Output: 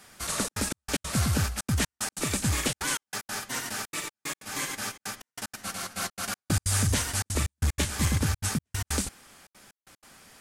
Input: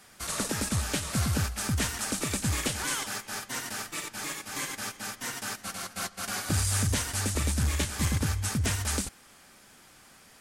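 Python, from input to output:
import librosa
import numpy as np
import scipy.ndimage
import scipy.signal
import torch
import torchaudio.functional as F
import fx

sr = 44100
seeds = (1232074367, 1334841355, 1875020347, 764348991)

y = fx.step_gate(x, sr, bpm=187, pattern='xxxxxx.xx..x.x', floor_db=-60.0, edge_ms=4.5)
y = F.gain(torch.from_numpy(y), 2.0).numpy()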